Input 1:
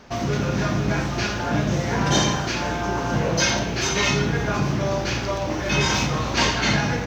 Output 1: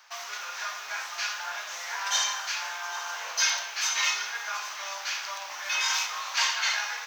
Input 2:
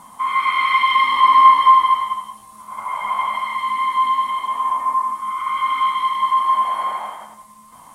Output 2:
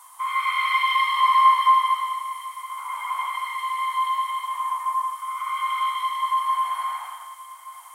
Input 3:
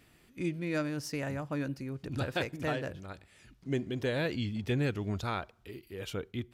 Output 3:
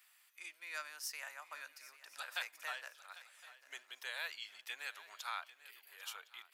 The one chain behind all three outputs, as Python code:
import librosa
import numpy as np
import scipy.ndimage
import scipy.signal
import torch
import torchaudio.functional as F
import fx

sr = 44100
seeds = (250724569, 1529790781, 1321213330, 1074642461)

p1 = scipy.signal.sosfilt(scipy.signal.butter(4, 960.0, 'highpass', fs=sr, output='sos'), x)
p2 = fx.high_shelf(p1, sr, hz=9200.0, db=12.0)
p3 = p2 + fx.echo_swing(p2, sr, ms=1061, ratio=3, feedback_pct=32, wet_db=-16.5, dry=0)
y = p3 * 10.0 ** (-4.5 / 20.0)